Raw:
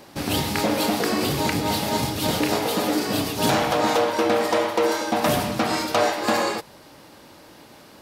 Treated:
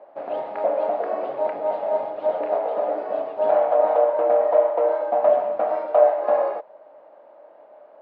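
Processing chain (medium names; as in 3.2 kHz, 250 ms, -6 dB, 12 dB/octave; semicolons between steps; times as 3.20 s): ladder band-pass 660 Hz, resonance 75%; distance through air 290 m; trim +8.5 dB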